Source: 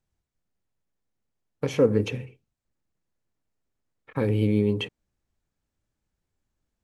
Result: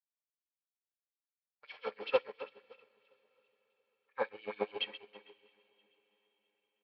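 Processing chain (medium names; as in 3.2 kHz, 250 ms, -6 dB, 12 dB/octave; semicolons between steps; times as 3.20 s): backward echo that repeats 163 ms, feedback 75%, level -5.5 dB; dynamic bell 920 Hz, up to +5 dB, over -37 dBFS, Q 0.76; harmonic-percussive split harmonic +9 dB; feedback comb 170 Hz, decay 0.84 s, harmonics all, mix 60%; in parallel at -10 dB: one-sided clip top -23.5 dBFS; on the sum: LFO high-pass sine 7.3 Hz 720–3300 Hz; echo that smears into a reverb 555 ms, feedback 51%, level -13.5 dB; on a send at -11 dB: reverberation RT60 0.55 s, pre-delay 5 ms; on the sum: resampled via 11.025 kHz; upward expansion 2.5:1, over -41 dBFS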